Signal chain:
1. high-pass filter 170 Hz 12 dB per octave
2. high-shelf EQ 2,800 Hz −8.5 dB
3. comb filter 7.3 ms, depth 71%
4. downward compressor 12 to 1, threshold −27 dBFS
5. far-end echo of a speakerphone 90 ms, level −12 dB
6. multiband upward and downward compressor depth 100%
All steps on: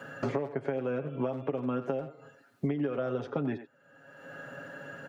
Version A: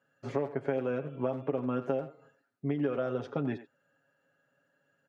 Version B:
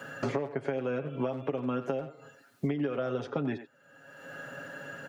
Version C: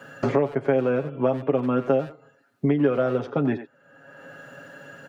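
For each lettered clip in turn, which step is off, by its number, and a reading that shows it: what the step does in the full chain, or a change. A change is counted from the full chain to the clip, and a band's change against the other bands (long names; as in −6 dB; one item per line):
6, change in crest factor +1.5 dB
2, 4 kHz band +4.5 dB
4, average gain reduction 6.5 dB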